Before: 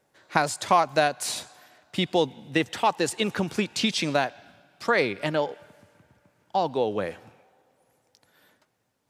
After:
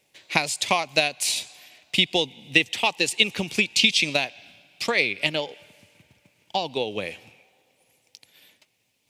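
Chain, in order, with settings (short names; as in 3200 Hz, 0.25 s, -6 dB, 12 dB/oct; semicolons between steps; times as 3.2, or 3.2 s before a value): transient shaper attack +5 dB, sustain -1 dB; resonant high shelf 1900 Hz +8.5 dB, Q 3; in parallel at -2 dB: compressor, threshold -26 dBFS, peak gain reduction 17.5 dB; on the sum: gain -6.5 dB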